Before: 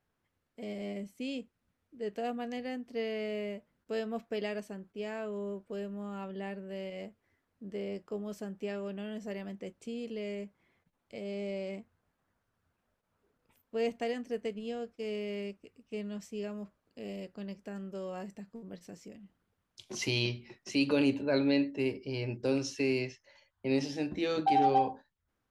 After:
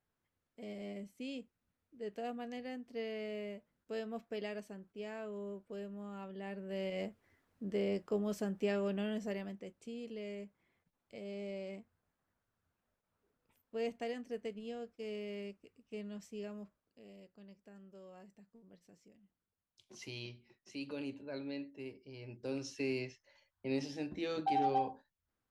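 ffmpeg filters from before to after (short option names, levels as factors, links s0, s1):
-af "volume=3.76,afade=t=in:st=6.42:d=0.58:silence=0.354813,afade=t=out:st=9.02:d=0.62:silence=0.354813,afade=t=out:st=16.58:d=0.45:silence=0.354813,afade=t=in:st=22.19:d=0.65:silence=0.375837"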